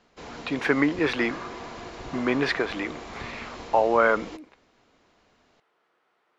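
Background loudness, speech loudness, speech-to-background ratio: -39.5 LUFS, -25.0 LUFS, 14.5 dB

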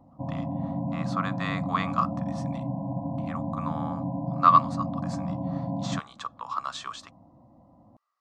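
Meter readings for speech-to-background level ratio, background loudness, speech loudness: 3.5 dB, -32.0 LUFS, -28.5 LUFS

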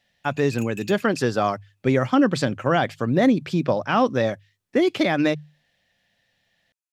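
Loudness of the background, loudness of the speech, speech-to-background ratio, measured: -42.0 LUFS, -22.0 LUFS, 20.0 dB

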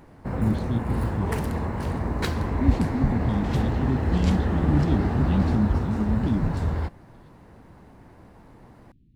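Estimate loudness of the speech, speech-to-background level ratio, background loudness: -27.5 LUFS, -1.0 dB, -26.5 LUFS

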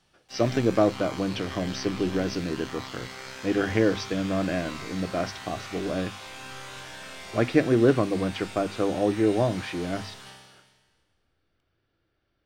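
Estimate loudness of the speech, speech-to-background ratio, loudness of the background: -27.0 LUFS, 12.0 dB, -39.0 LUFS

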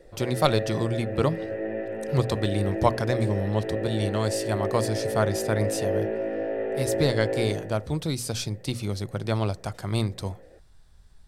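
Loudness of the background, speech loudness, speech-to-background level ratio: -30.5 LUFS, -28.0 LUFS, 2.5 dB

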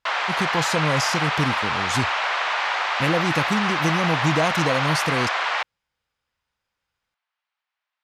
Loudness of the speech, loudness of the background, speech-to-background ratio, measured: -25.0 LUFS, -23.0 LUFS, -2.0 dB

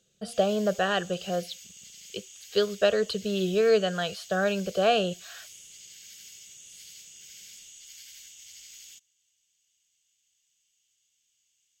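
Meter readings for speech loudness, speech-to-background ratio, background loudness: -26.5 LUFS, 19.0 dB, -45.5 LUFS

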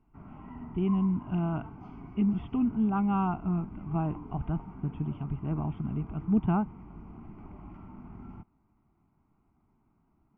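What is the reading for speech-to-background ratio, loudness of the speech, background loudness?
15.5 dB, -31.0 LUFS, -46.5 LUFS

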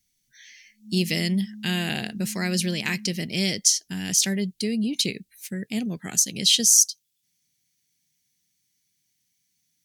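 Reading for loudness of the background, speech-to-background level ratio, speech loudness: -41.0 LUFS, 18.5 dB, -22.5 LUFS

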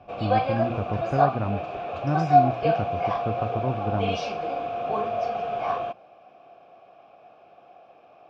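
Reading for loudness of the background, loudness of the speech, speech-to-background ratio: -26.5 LUFS, -30.0 LUFS, -3.5 dB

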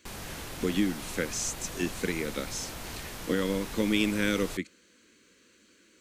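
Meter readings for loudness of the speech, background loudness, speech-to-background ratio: -31.0 LUFS, -40.0 LUFS, 9.0 dB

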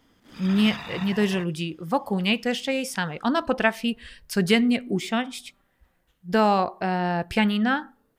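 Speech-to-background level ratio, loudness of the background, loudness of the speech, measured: 13.5 dB, -38.0 LUFS, -24.5 LUFS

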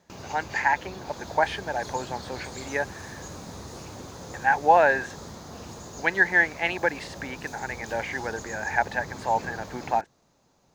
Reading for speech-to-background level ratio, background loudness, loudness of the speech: 14.5 dB, -40.5 LUFS, -26.0 LUFS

